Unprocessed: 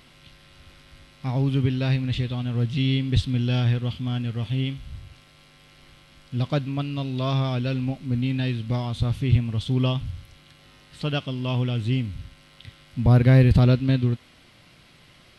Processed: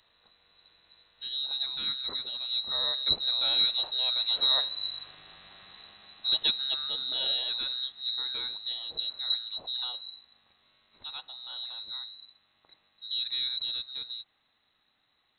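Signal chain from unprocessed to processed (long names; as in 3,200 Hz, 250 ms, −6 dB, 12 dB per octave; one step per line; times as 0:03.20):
source passing by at 0:05.17, 7 m/s, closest 5.8 metres
voice inversion scrambler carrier 4,000 Hz
level +1.5 dB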